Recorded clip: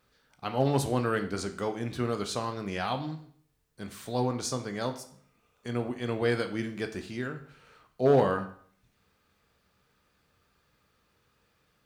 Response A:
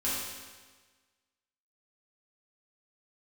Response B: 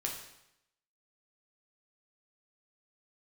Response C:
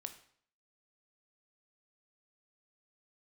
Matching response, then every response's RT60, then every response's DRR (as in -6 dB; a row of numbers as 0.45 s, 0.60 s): C; 1.4 s, 0.80 s, 0.60 s; -9.5 dB, -0.5 dB, 7.0 dB